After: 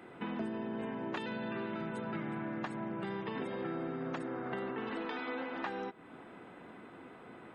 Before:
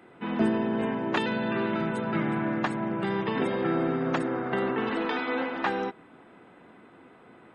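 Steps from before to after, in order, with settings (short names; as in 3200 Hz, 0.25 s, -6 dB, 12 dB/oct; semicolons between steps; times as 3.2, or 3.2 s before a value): compressor 4:1, threshold -39 dBFS, peak gain reduction 16 dB; gain +1 dB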